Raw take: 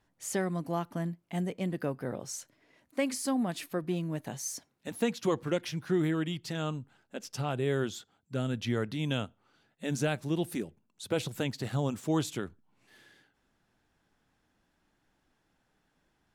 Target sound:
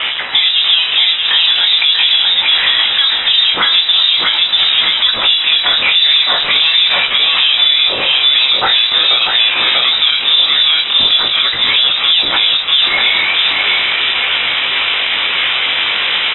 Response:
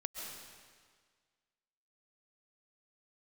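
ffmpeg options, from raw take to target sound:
-filter_complex "[0:a]aeval=exprs='val(0)+0.5*0.0158*sgn(val(0))':c=same,asplit=2[a][b];[b]aecho=0:1:639|1278|1917|2556|3195:0.562|0.219|0.0855|0.0334|0.013[c];[a][c]amix=inputs=2:normalize=0,acontrast=35,highpass=410,aemphasis=mode=reproduction:type=75kf,acompressor=threshold=-30dB:ratio=6,aeval=exprs='(tanh(31.6*val(0)+0.45)-tanh(0.45))/31.6':c=same,asplit=2[d][e];[e]adelay=43,volume=-11.5dB[f];[d][f]amix=inputs=2:normalize=0,lowpass=f=3.3k:t=q:w=0.5098,lowpass=f=3.3k:t=q:w=0.6013,lowpass=f=3.3k:t=q:w=0.9,lowpass=f=3.3k:t=q:w=2.563,afreqshift=-3900,flanger=delay=15.5:depth=7.7:speed=0.42,alimiter=level_in=31.5dB:limit=-1dB:release=50:level=0:latency=1,volume=-1dB"

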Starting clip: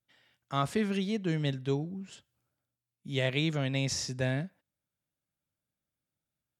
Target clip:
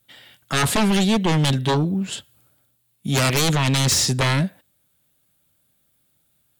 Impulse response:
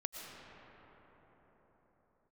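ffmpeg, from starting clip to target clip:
-af "aexciter=amount=1.8:drive=2.2:freq=3.1k,aeval=exprs='0.224*sin(PI/2*5.62*val(0)/0.224)':c=same,volume=-1.5dB"

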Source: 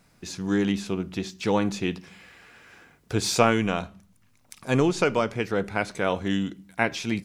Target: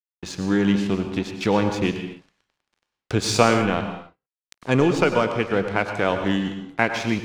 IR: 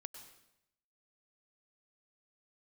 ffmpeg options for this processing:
-filter_complex "[0:a]asettb=1/sr,asplit=3[a][b][c];[a]atrim=end=3.534[d];[b]atrim=start=3.53:end=4.71,asetpts=PTS-STARTPTS,afade=t=in:d=0.004:c=qsin,afade=t=out:st=1.176:d=0.004:c=qsin,aemphasis=mode=reproduction:type=50kf[e];[c]atrim=start=4.706[f];[d][e]acrossfade=d=0.004:c1=hsin:c2=qsin[g];[g][f]acrossfade=d=0.004:c1=qsin:c2=hsin,asplit=2[h][i];[i]acompressor=threshold=-30dB:ratio=6,volume=1.5dB[j];[h][j]amix=inputs=2:normalize=0,aeval=exprs='sgn(val(0))*max(abs(val(0))-0.0158,0)':c=same,acrossover=split=670|3500[k][l][m];[m]adynamicsmooth=sensitivity=4.5:basefreq=6.3k[n];[k][l][n]amix=inputs=3:normalize=0[o];[1:a]atrim=start_sample=2205,afade=t=out:st=0.34:d=0.01,atrim=end_sample=15435[p];[o][p]afir=irnorm=-1:irlink=0,volume=7dB"

